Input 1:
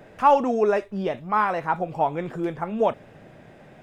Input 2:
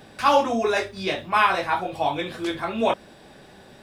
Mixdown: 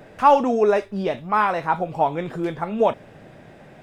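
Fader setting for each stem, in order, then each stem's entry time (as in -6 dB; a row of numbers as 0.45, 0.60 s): +2.5, -14.0 dB; 0.00, 0.00 s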